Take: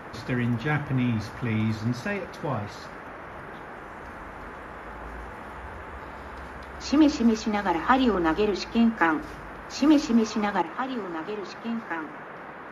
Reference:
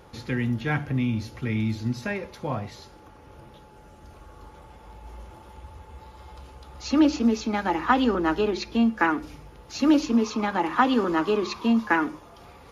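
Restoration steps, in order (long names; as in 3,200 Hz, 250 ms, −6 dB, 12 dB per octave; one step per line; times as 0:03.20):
noise reduction from a noise print 8 dB
level correction +10 dB, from 0:10.62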